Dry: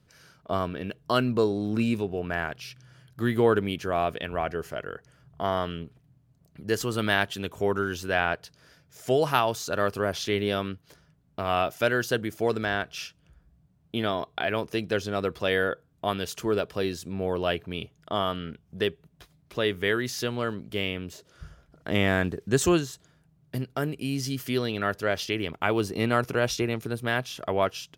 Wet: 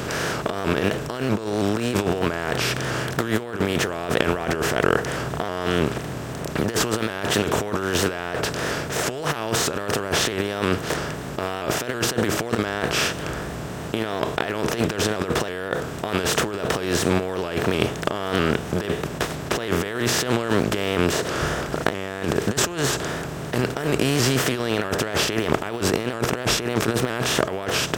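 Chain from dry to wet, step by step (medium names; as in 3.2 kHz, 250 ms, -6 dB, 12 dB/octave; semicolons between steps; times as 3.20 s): spectral levelling over time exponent 0.4; compressor with a negative ratio -23 dBFS, ratio -0.5; vibrato with a chosen wave saw up 3.1 Hz, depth 100 cents; trim +1 dB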